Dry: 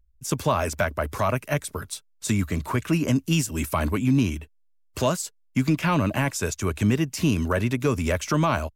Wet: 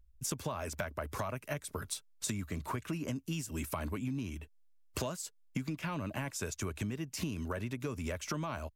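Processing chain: compression 10:1, threshold -34 dBFS, peak gain reduction 17.5 dB

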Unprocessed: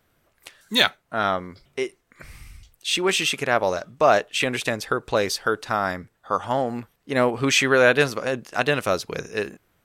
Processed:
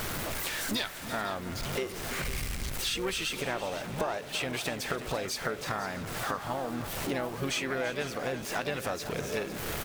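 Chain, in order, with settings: jump at every zero crossing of -29.5 dBFS; compression 6:1, threshold -32 dBFS, peak gain reduction 19.5 dB; harmony voices -12 st -15 dB, +5 st -7 dB; multi-head delay 168 ms, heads second and third, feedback 41%, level -14 dB

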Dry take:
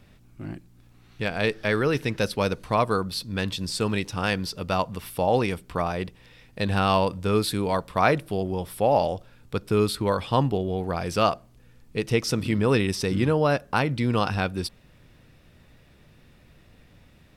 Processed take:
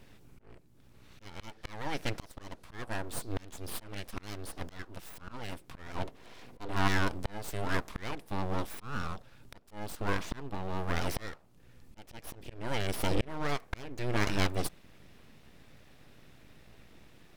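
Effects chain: slow attack 690 ms; 5.94–6.87 s: small resonant body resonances 260/470/900 Hz, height 12 dB -> 15 dB, ringing for 35 ms; full-wave rectifier

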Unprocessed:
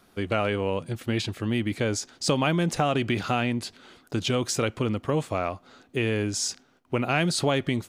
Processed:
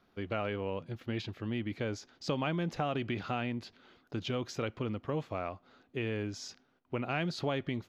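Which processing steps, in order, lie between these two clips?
boxcar filter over 5 samples; trim -9 dB

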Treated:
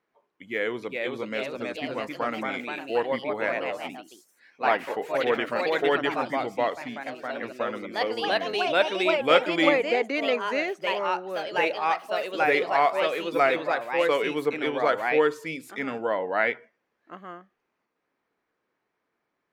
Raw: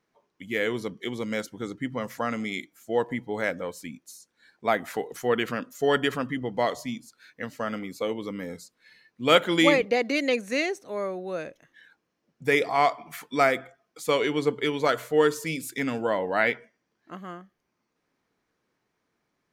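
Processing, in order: tone controls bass -10 dB, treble -13 dB; ever faster or slower copies 466 ms, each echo +2 st, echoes 3

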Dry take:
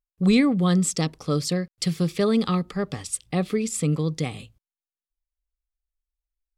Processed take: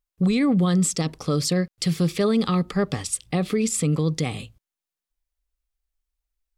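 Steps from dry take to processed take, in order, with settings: peak limiter -19 dBFS, peak gain reduction 10.5 dB; trim +5 dB

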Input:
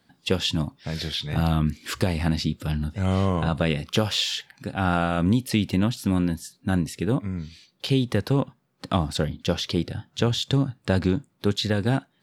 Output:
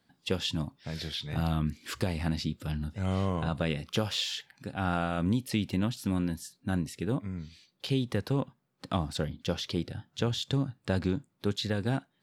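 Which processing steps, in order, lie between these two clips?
5.84–6.54 s: tape noise reduction on one side only encoder only; trim -7 dB

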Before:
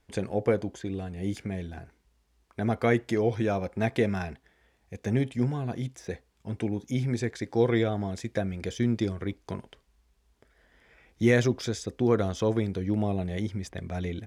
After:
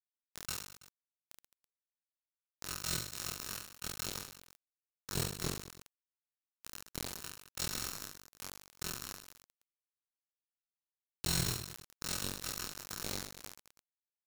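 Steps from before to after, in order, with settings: sorted samples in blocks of 32 samples; steep low-pass 9.1 kHz 72 dB/octave; level-controlled noise filter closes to 610 Hz, open at -24.5 dBFS; FFT band-reject 210–3300 Hz; peaking EQ 1.8 kHz -7 dB 0.23 oct; harmonic-percussive split percussive -10 dB; treble shelf 6.1 kHz +10 dB; AM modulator 45 Hz, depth 95%; flange 0.16 Hz, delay 6.2 ms, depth 8.9 ms, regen -87%; bit crusher 5-bit; reverse bouncing-ball echo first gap 30 ms, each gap 1.4×, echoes 5; decay stretcher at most 93 dB/s; trim -1.5 dB

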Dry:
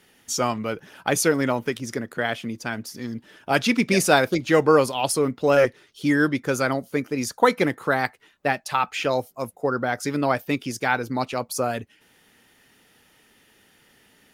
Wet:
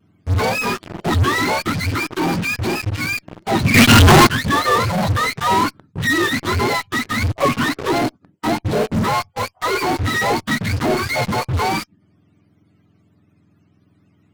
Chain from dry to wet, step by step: spectrum inverted on a logarithmic axis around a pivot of 740 Hz; in parallel at -5.5 dB: fuzz box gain 46 dB, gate -41 dBFS; on the sum: vibrato 0.49 Hz 14 cents; 3.74–4.27 s: waveshaping leveller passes 5; trim -2 dB

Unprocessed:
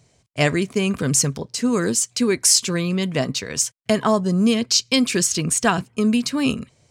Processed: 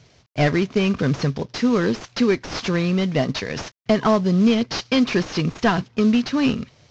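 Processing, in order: CVSD coder 32 kbps; in parallel at -1.5 dB: compression, threshold -30 dBFS, peak gain reduction 15.5 dB

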